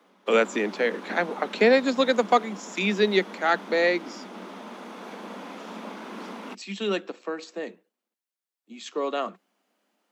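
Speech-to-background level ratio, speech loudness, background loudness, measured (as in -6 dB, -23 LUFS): 15.5 dB, -25.0 LUFS, -40.5 LUFS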